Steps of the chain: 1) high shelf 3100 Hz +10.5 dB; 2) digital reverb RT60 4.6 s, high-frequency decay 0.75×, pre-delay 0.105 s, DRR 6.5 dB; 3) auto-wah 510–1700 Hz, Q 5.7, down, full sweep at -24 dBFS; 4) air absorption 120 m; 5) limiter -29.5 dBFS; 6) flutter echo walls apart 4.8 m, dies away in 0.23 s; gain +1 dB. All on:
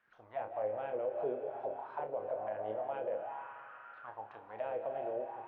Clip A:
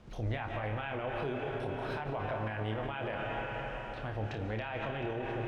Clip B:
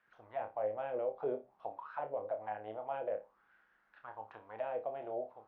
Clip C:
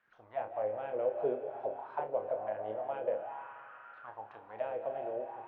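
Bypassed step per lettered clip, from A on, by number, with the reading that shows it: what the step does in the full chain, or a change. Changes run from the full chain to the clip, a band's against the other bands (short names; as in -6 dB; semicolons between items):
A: 3, 125 Hz band +16.5 dB; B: 2, crest factor change +1.5 dB; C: 5, crest factor change +2.5 dB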